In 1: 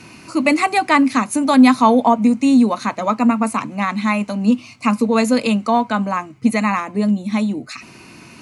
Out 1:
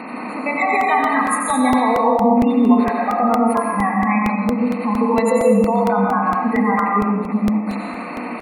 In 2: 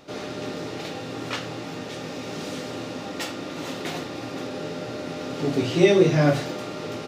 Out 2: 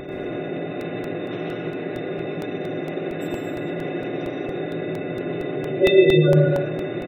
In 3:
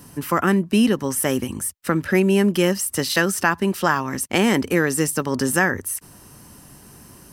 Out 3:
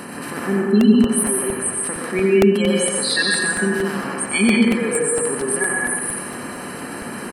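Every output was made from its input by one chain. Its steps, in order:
spectral levelling over time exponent 0.2; spectral noise reduction 22 dB; spectral gate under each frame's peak -25 dB strong; peak limiter -11 dBFS; on a send: delay 90 ms -6.5 dB; on the sum: plate-style reverb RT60 1 s, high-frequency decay 0.75×, pre-delay 110 ms, DRR -0.5 dB; crackling interface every 0.23 s, samples 64, repeat, from 0.81 s; peak normalisation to -3 dBFS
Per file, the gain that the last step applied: 0.0 dB, +5.0 dB, +2.5 dB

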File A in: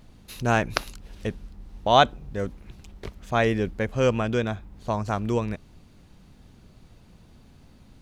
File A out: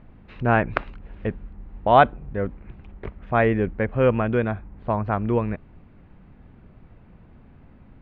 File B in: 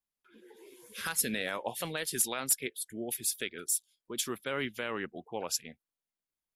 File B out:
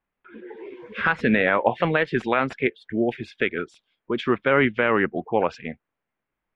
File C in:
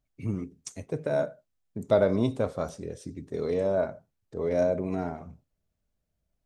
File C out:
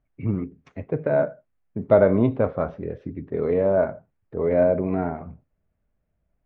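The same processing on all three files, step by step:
low-pass 2.3 kHz 24 dB/octave; normalise loudness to -23 LUFS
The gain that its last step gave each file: +3.0 dB, +16.0 dB, +6.0 dB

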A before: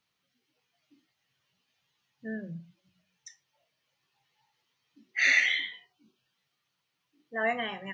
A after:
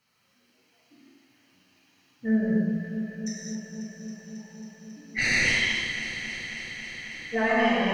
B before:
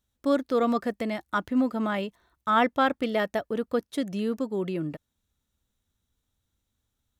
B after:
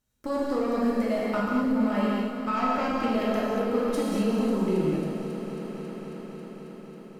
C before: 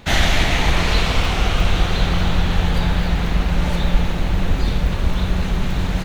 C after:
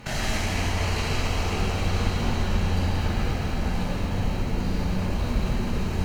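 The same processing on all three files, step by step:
Chebyshev shaper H 5 -7 dB, 8 -12 dB, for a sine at -2 dBFS; flange 0.93 Hz, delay 7.3 ms, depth 4.2 ms, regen +43%; compression 6:1, threshold -22 dBFS; band-stop 3.5 kHz, Q 5.1; echo whose repeats swap between lows and highs 136 ms, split 850 Hz, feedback 90%, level -9.5 dB; gated-style reverb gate 270 ms flat, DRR -5.5 dB; dynamic bell 1.7 kHz, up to -4 dB, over -37 dBFS, Q 0.84; normalise loudness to -27 LUFS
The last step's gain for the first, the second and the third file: 0.0 dB, -6.5 dB, -7.0 dB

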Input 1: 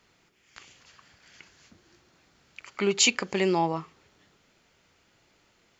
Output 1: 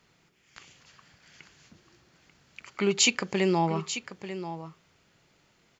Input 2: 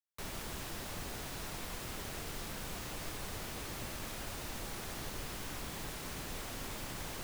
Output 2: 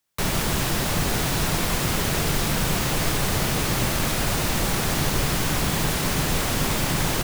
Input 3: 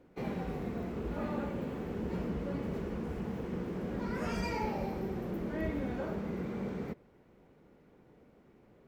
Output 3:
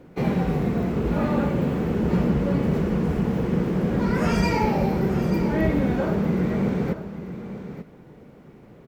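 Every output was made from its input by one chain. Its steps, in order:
peaking EQ 150 Hz +6.5 dB 0.68 oct; on a send: delay 890 ms -11.5 dB; on the sum: peak normalisation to -9 dBFS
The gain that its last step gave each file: -1.0 dB, +18.0 dB, +12.0 dB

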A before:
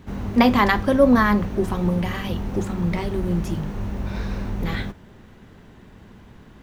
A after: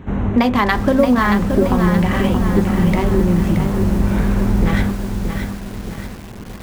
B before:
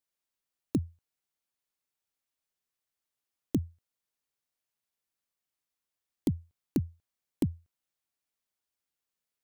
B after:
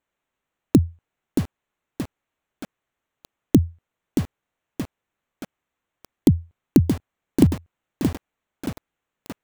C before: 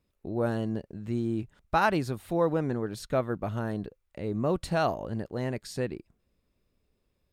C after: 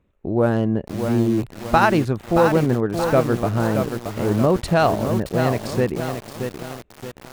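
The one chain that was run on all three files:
local Wiener filter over 9 samples; compression 8:1, threshold -21 dBFS; bit-crushed delay 625 ms, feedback 55%, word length 7-bit, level -6 dB; peak normalisation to -1.5 dBFS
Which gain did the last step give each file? +9.5 dB, +14.5 dB, +10.5 dB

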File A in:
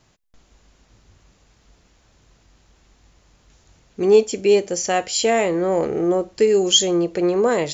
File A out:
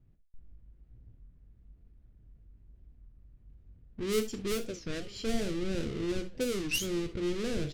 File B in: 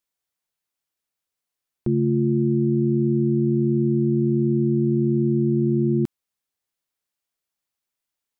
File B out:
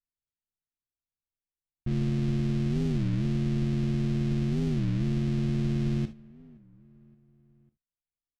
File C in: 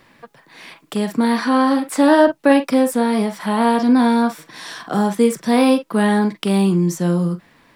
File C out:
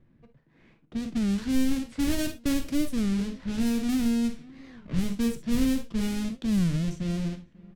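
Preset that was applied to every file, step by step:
square wave that keeps the level; on a send: feedback delay 546 ms, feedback 52%, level -24 dB; on the sum: level-controlled noise filter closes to 1.5 kHz, open at -7.5 dBFS; gated-style reverb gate 90 ms flat, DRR 7.5 dB; in parallel at -6 dB: saturation -11.5 dBFS; on the sum: amplifier tone stack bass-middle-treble 10-0-1; warped record 33 1/3 rpm, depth 250 cents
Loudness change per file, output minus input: -15.5 LU, -7.5 LU, -11.5 LU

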